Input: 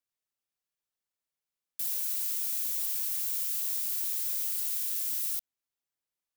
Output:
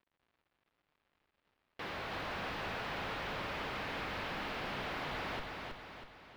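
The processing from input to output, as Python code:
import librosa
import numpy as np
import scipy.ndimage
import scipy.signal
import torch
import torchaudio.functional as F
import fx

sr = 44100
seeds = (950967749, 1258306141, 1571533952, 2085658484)

y = fx.tracing_dist(x, sr, depth_ms=0.045)
y = scipy.signal.sosfilt(scipy.signal.butter(4, 570.0, 'highpass', fs=sr, output='sos'), y)
y = fx.high_shelf(y, sr, hz=6800.0, db=4.5)
y = fx.schmitt(y, sr, flips_db=-32.5)
y = fx.dmg_crackle(y, sr, seeds[0], per_s=190.0, level_db=-53.0)
y = fx.air_absorb(y, sr, metres=360.0)
y = fx.echo_feedback(y, sr, ms=322, feedback_pct=50, wet_db=-4)
y = y * librosa.db_to_amplitude(-2.5)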